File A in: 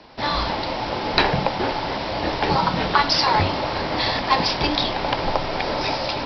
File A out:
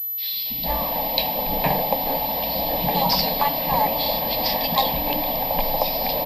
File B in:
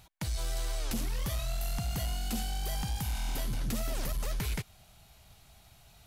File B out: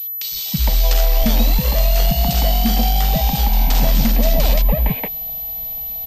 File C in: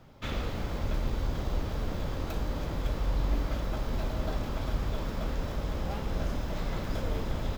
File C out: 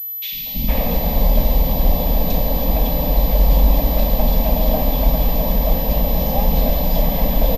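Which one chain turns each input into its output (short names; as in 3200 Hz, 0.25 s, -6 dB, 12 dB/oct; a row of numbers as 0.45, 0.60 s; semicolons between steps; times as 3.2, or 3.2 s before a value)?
fixed phaser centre 370 Hz, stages 6; three bands offset in time highs, lows, mids 0.32/0.46 s, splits 260/2500 Hz; pulse-width modulation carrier 12000 Hz; normalise peaks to -3 dBFS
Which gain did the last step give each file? +2.0, +21.0, +18.0 dB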